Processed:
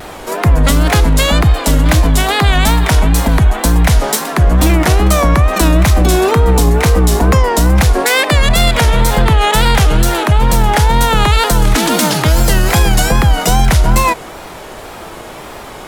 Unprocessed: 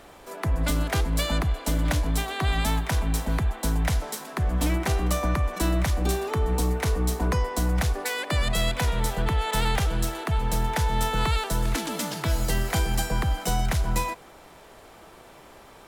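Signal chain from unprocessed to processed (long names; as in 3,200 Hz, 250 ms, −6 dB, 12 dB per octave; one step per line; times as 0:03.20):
tape wow and flutter 110 cents
boost into a limiter +20 dB
level −1 dB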